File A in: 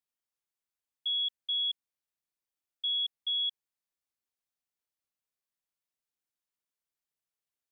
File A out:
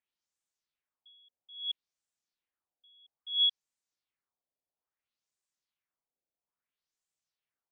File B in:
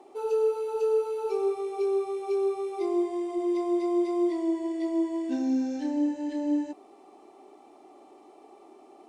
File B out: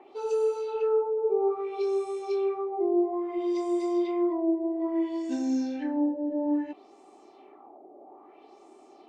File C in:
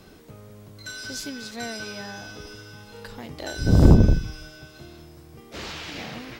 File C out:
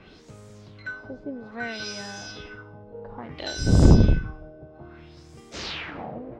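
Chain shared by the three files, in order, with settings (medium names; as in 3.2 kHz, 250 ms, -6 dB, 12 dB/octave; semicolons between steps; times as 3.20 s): LFO low-pass sine 0.6 Hz 570–8000 Hz; trim -1 dB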